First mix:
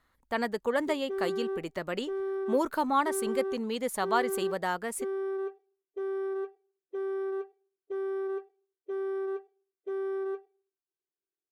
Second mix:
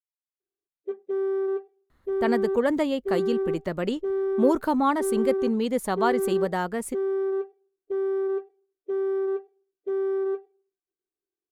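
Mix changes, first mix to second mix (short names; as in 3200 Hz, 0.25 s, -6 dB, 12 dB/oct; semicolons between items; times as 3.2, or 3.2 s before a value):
speech: entry +1.90 s; master: add low shelf 470 Hz +11.5 dB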